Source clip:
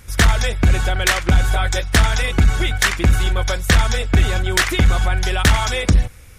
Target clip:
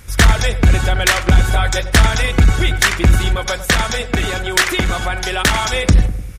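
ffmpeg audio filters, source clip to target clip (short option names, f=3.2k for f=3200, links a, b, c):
-filter_complex "[0:a]asettb=1/sr,asplit=3[a][b][c];[a]atrim=end=3.354[d];[b]atrim=start=3.35:end=5.73,asetpts=PTS-STARTPTS,afade=t=in:d=0.004:c=qsin,afade=t=out:st=2.376:d=0.004:c=qsin,equalizer=f=70:t=o:w=2.4:g=-10.5[e];[c]atrim=start=5.726[f];[d][e]acrossfade=d=0.004:c1=hsin:c2=qsin[g];[g][f]acrossfade=d=0.004:c1=qsin:c2=hsin,asplit=2[h][i];[i]adelay=100,lowpass=f=890:p=1,volume=-10dB,asplit=2[j][k];[k]adelay=100,lowpass=f=890:p=1,volume=0.52,asplit=2[l][m];[m]adelay=100,lowpass=f=890:p=1,volume=0.52,asplit=2[n][o];[o]adelay=100,lowpass=f=890:p=1,volume=0.52,asplit=2[p][q];[q]adelay=100,lowpass=f=890:p=1,volume=0.52,asplit=2[r][s];[s]adelay=100,lowpass=f=890:p=1,volume=0.52[t];[h][j][l][n][p][r][t]amix=inputs=7:normalize=0,volume=3dB"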